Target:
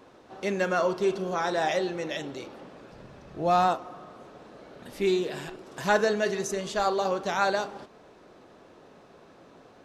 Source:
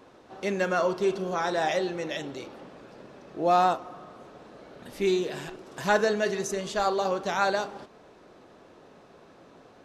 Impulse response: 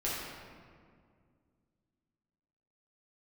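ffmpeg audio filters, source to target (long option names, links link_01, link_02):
-filter_complex "[0:a]asplit=3[link_01][link_02][link_03];[link_01]afade=type=out:start_time=2.91:duration=0.02[link_04];[link_02]asubboost=boost=6:cutoff=130,afade=type=in:start_time=2.91:duration=0.02,afade=type=out:start_time=3.67:duration=0.02[link_05];[link_03]afade=type=in:start_time=3.67:duration=0.02[link_06];[link_04][link_05][link_06]amix=inputs=3:normalize=0,asettb=1/sr,asplit=3[link_07][link_08][link_09];[link_07]atrim=end=4.994[link_10];[link_08]atrim=start=4.99:end=5.63,asetpts=PTS-STARTPTS,afade=type=in:duration=0.004:curve=qsin,afade=type=out:start_time=0.636:duration=0.004:curve=qsin,bandreject=frequency=6200:width=11[link_11];[link_09]atrim=start=5.626[link_12];[link_10][link_11]acrossfade=duration=0.004:curve1=hsin:curve2=qsin[link_13];[link_13][link_12]acrossfade=duration=0.004:curve1=qsin:curve2=hsin"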